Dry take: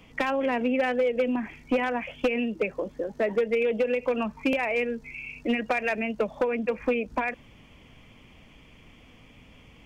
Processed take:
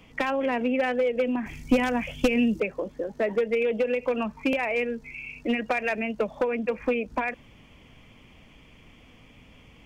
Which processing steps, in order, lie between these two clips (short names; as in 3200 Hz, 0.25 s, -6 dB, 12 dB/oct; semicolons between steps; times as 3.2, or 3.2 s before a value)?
1.46–2.6 tone controls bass +12 dB, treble +14 dB